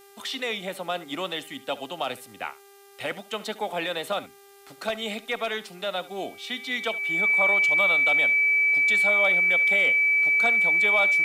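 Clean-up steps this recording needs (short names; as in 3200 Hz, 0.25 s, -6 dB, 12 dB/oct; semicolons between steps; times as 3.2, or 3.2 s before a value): de-hum 398.4 Hz, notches 33; notch 2300 Hz, Q 30; expander -42 dBFS, range -21 dB; inverse comb 71 ms -18 dB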